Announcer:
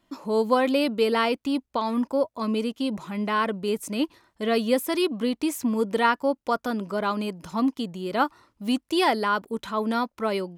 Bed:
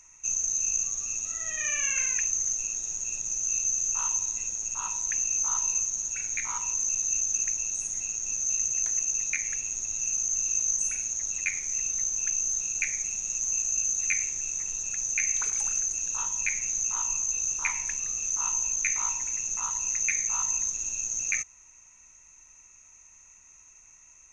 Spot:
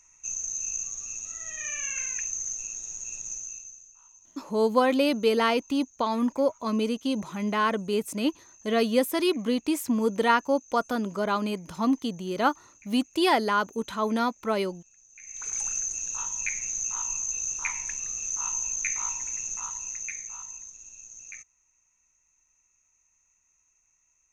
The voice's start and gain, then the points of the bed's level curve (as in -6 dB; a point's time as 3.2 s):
4.25 s, -0.5 dB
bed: 3.33 s -4.5 dB
3.95 s -27.5 dB
15.1 s -27.5 dB
15.53 s -2 dB
19.47 s -2 dB
20.68 s -15 dB